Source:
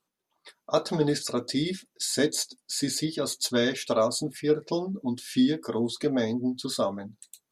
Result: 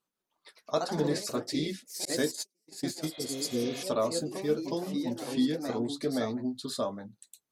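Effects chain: ever faster or slower copies 152 ms, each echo +2 st, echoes 3, each echo -6 dB; 2.05–3.29 s: gate -27 dBFS, range -40 dB; 3.14–3.78 s: spectral replace 520–4200 Hz both; trim -5 dB

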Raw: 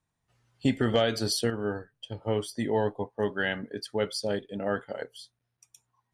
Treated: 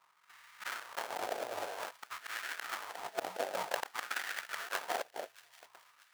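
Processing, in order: FFT band-reject 190–660 Hz; level-controlled noise filter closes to 960 Hz, open at -28.5 dBFS; graphic EQ 500/1000/2000/4000/8000 Hz +4/-11/+7/+6/+9 dB; slow attack 711 ms; compressor with a negative ratio -53 dBFS, ratio -1; sample-rate reducer 1.1 kHz, jitter 20%; LFO high-pass sine 0.52 Hz 630–1600 Hz; on a send: feedback echo behind a high-pass 634 ms, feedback 45%, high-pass 2.2 kHz, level -17 dB; on the sum: trim +18 dB

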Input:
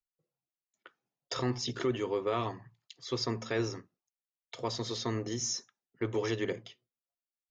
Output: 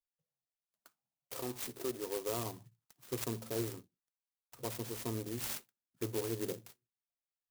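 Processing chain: 1.36–2.29 s: tone controls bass -12 dB, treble +2 dB; touch-sensitive phaser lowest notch 350 Hz, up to 2.6 kHz, full sweep at -33 dBFS; sampling jitter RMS 0.14 ms; trim -4.5 dB

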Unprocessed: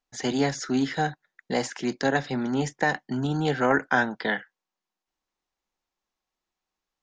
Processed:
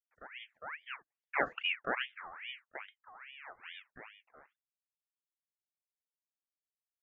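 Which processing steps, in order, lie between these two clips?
pitch shift switched off and on -5 st, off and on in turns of 318 ms; Doppler pass-by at 1.56 s, 38 m/s, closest 2.2 m; elliptic low-pass 880 Hz, stop band 40 dB; bass shelf 130 Hz -12 dB; ring modulator with a swept carrier 1.8 kHz, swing 50%, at 2.4 Hz; trim +9.5 dB

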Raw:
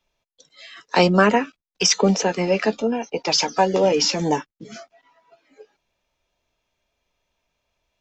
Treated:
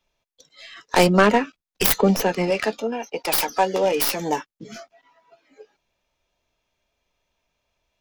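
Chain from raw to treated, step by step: tracing distortion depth 0.33 ms; 2.50–4.52 s: bass shelf 280 Hz -11 dB

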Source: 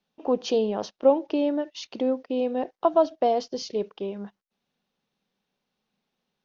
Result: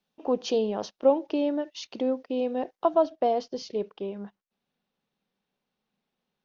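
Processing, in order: treble shelf 5.9 kHz +2.5 dB, from 2.95 s -8.5 dB; trim -2 dB

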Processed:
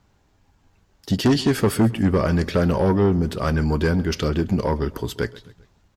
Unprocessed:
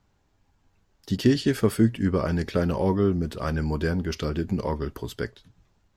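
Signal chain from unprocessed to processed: Chebyshev shaper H 5 -13 dB, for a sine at -8 dBFS; feedback delay 132 ms, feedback 46%, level -20.5 dB

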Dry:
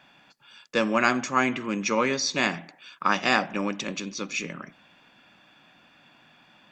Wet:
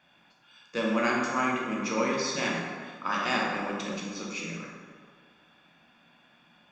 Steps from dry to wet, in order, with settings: plate-style reverb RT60 1.8 s, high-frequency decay 0.55×, DRR -3.5 dB; trim -9 dB

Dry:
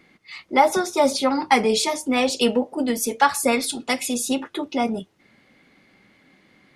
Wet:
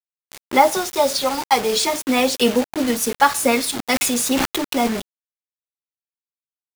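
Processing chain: 0.73–1.76 s: graphic EQ 250/2000/4000 Hz -10/-7/+3 dB; bit crusher 5-bit; 3.75–4.88 s: decay stretcher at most 23 dB/s; trim +2.5 dB

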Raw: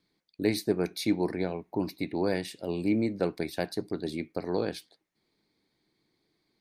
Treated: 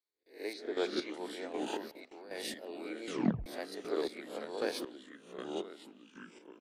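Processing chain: reverse spectral sustain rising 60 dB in 0.37 s; high-pass 390 Hz 24 dB/octave; gate with hold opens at -50 dBFS; ever faster or slower copies 152 ms, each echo -3 st, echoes 3, each echo -6 dB; 0.53–1.14 s: distance through air 140 m; 1.88–2.43 s: level held to a coarse grid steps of 20 dB; 3.06 s: tape stop 0.40 s; speakerphone echo 180 ms, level -17 dB; square tremolo 1.3 Hz, depth 65%, duty 30%; 4.02–4.45 s: three bands compressed up and down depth 40%; trim -1 dB

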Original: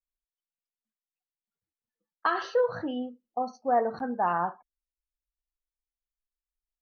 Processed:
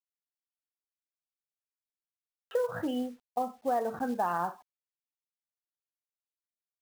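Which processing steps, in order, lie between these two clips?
resampled via 8 kHz; companded quantiser 6-bit; compression, threshold -27 dBFS, peak gain reduction 7.5 dB; buffer glitch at 2.00 s, samples 2048, times 10; trim +1 dB

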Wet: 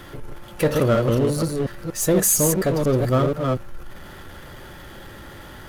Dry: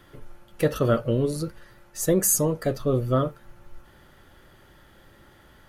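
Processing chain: chunks repeated in reverse 238 ms, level -4.5 dB; power-law waveshaper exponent 0.7

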